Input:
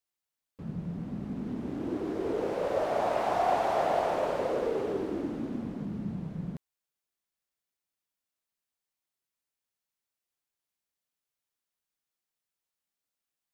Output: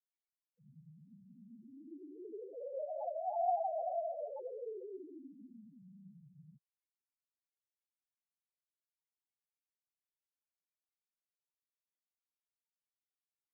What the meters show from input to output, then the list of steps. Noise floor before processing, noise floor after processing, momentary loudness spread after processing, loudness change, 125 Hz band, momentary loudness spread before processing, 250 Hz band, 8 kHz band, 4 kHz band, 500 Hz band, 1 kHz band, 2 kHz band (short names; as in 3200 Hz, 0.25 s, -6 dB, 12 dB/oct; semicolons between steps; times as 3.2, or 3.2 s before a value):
under -85 dBFS, under -85 dBFS, 23 LU, -8.5 dB, -22.5 dB, 10 LU, -20.0 dB, n/a, under -35 dB, -10.5 dB, -9.0 dB, under -40 dB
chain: frequency shift -16 Hz; loudest bins only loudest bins 2; double band-pass 1400 Hz, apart 1.2 oct; gain +10 dB